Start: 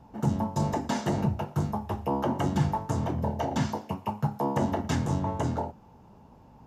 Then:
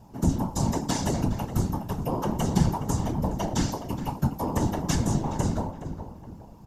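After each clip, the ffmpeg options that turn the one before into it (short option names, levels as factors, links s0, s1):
-filter_complex "[0:a]bass=f=250:g=5,treble=f=4000:g=13,asplit=2[s0][s1];[s1]adelay=417,lowpass=f=1800:p=1,volume=0.335,asplit=2[s2][s3];[s3]adelay=417,lowpass=f=1800:p=1,volume=0.39,asplit=2[s4][s5];[s5]adelay=417,lowpass=f=1800:p=1,volume=0.39,asplit=2[s6][s7];[s7]adelay=417,lowpass=f=1800:p=1,volume=0.39[s8];[s0][s2][s4][s6][s8]amix=inputs=5:normalize=0,afftfilt=real='hypot(re,im)*cos(2*PI*random(0))':imag='hypot(re,im)*sin(2*PI*random(1))':win_size=512:overlap=0.75,volume=1.68"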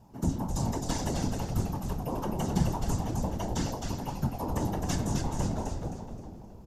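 -filter_complex "[0:a]asplit=6[s0][s1][s2][s3][s4][s5];[s1]adelay=262,afreqshift=-140,volume=0.631[s6];[s2]adelay=524,afreqshift=-280,volume=0.226[s7];[s3]adelay=786,afreqshift=-420,volume=0.0822[s8];[s4]adelay=1048,afreqshift=-560,volume=0.0295[s9];[s5]adelay=1310,afreqshift=-700,volume=0.0106[s10];[s0][s6][s7][s8][s9][s10]amix=inputs=6:normalize=0,volume=0.531"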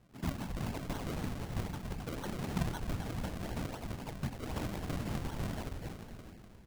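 -af "acrusher=samples=35:mix=1:aa=0.000001:lfo=1:lforange=35:lforate=3.9,volume=0.422"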